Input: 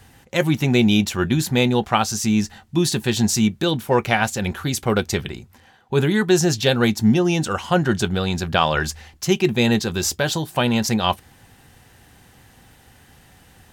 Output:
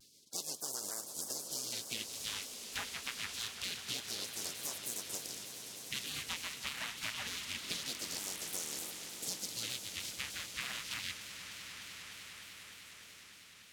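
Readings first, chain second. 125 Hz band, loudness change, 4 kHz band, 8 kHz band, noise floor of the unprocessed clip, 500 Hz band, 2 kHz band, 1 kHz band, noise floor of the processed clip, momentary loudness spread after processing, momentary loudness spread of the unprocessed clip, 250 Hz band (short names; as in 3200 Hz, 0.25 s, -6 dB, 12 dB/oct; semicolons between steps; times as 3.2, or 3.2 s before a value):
-35.0 dB, -19.5 dB, -13.0 dB, -10.5 dB, -52 dBFS, -31.5 dB, -18.0 dB, -26.5 dB, -57 dBFS, 9 LU, 7 LU, -35.5 dB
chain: spectral contrast lowered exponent 0.15; wah 0.26 Hz 360–2600 Hz, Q 3.5; in parallel at +1 dB: limiter -18 dBFS, peak gain reduction 8 dB; on the sum: bell 1400 Hz +4 dB 2.7 oct; spectral gate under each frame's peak -25 dB weak; compressor 6:1, threshold -47 dBFS, peak gain reduction 14.5 dB; on a send: swelling echo 0.101 s, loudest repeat 8, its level -16 dB; on the sum: shaped vibrato saw down 3.3 Hz, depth 160 cents; gain +9 dB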